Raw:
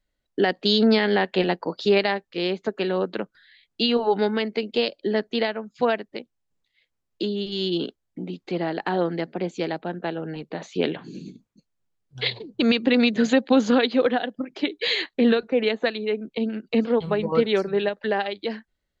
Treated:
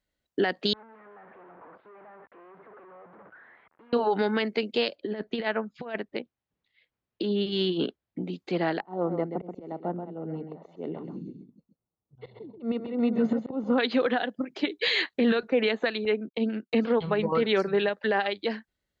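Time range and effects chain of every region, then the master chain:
0.73–3.93 s: one-bit comparator + Bessel low-pass 860 Hz, order 6 + differentiator
4.95–8.22 s: low-pass 3.4 kHz + compressor with a negative ratio -26 dBFS, ratio -0.5
8.80–13.78 s: slow attack 253 ms + Savitzky-Golay filter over 65 samples + delay 132 ms -7 dB
16.05–17.60 s: low-pass 5.4 kHz + gate -41 dBFS, range -30 dB
whole clip: high-pass 50 Hz; dynamic bell 1.5 kHz, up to +5 dB, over -35 dBFS, Q 0.74; peak limiter -14 dBFS; trim -1.5 dB

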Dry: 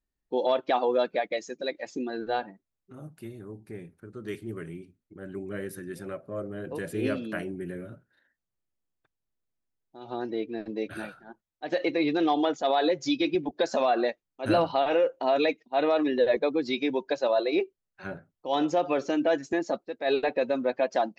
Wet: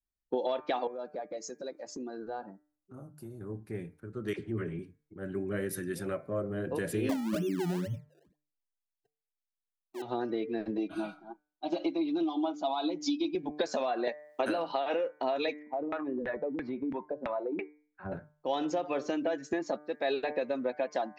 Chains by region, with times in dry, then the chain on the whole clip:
0.87–3.41 s: high-order bell 2.6 kHz -13 dB 1.3 oct + compression 2.5:1, threshold -42 dBFS
4.33–4.79 s: distance through air 110 m + phase dispersion lows, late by 53 ms, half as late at 770 Hz
7.09–10.02 s: spectral contrast enhancement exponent 3.5 + decimation with a swept rate 28× 2.1 Hz + peaking EQ 240 Hz +9 dB 2.9 oct
10.77–13.35 s: distance through air 79 m + static phaser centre 480 Hz, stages 6 + comb 6.2 ms, depth 82%
14.07–14.94 s: high-pass 270 Hz + three bands compressed up and down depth 100%
15.59–18.12 s: peaking EQ 460 Hz -7.5 dB 1.5 oct + LFO low-pass saw down 3 Hz 210–2100 Hz + compression 3:1, threshold -35 dBFS
whole clip: de-hum 149.6 Hz, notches 16; compression 12:1, threshold -32 dBFS; three bands expanded up and down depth 40%; trim +4 dB

